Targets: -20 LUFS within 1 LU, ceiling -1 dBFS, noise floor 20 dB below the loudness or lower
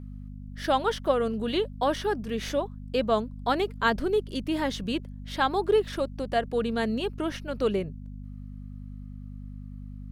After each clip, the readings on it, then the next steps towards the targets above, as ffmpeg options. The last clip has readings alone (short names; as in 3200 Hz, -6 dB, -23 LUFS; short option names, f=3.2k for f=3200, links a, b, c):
hum 50 Hz; harmonics up to 250 Hz; hum level -37 dBFS; loudness -28.0 LUFS; peak -10.5 dBFS; loudness target -20.0 LUFS
-> -af "bandreject=f=50:t=h:w=4,bandreject=f=100:t=h:w=4,bandreject=f=150:t=h:w=4,bandreject=f=200:t=h:w=4,bandreject=f=250:t=h:w=4"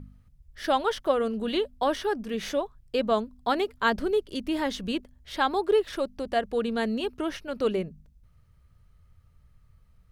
hum none; loudness -28.0 LUFS; peak -11.0 dBFS; loudness target -20.0 LUFS
-> -af "volume=8dB"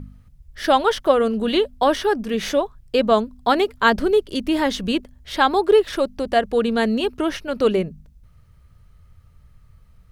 loudness -20.0 LUFS; peak -3.0 dBFS; noise floor -52 dBFS